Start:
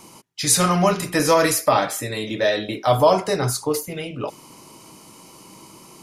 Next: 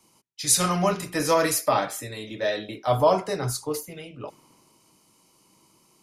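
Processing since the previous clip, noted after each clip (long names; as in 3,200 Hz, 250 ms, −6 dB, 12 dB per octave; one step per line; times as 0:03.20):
multiband upward and downward expander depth 40%
level −6 dB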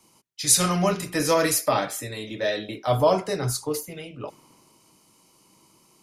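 dynamic equaliser 950 Hz, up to −4 dB, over −36 dBFS, Q 1.1
level +2 dB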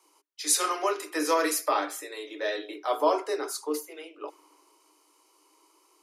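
Chebyshev high-pass with heavy ripple 290 Hz, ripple 6 dB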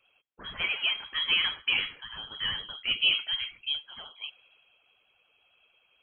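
pitch vibrato 11 Hz 89 cents
voice inversion scrambler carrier 3,600 Hz
level −1.5 dB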